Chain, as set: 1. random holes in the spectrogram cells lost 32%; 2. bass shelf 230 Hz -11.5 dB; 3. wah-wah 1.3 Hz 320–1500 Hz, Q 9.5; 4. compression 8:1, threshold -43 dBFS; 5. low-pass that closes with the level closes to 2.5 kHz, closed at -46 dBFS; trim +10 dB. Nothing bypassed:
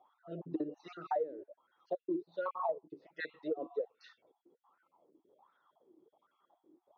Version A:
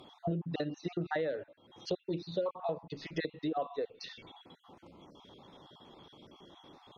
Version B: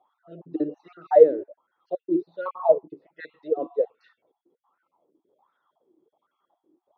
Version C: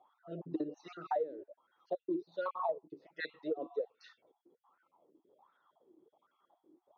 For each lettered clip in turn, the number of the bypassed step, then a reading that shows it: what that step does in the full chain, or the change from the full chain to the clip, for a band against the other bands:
3, 125 Hz band +11.0 dB; 4, mean gain reduction 9.5 dB; 5, 4 kHz band +3.5 dB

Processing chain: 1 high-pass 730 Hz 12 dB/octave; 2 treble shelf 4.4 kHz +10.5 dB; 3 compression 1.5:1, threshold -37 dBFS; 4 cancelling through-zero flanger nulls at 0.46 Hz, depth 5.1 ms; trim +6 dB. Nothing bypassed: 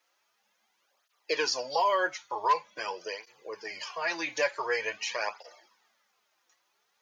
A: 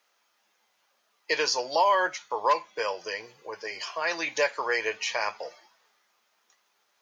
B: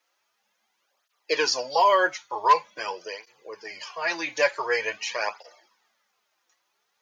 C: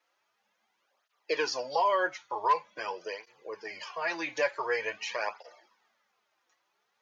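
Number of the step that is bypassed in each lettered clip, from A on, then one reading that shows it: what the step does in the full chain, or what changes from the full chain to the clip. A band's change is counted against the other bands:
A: 4, loudness change +3.0 LU; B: 3, mean gain reduction 3.5 dB; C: 2, 4 kHz band -4.0 dB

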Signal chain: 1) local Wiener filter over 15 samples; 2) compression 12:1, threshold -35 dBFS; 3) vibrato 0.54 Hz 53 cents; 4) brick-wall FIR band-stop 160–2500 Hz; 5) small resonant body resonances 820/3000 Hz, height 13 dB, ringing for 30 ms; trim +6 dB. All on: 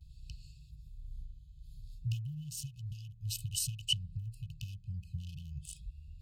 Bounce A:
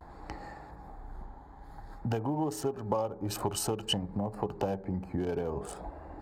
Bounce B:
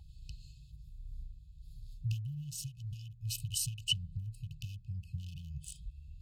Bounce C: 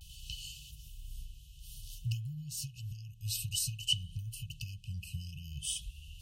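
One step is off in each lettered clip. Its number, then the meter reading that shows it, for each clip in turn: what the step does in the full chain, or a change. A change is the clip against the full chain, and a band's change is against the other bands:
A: 4, 250 Hz band +17.0 dB; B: 3, 2 kHz band +2.0 dB; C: 1, 2 kHz band +3.0 dB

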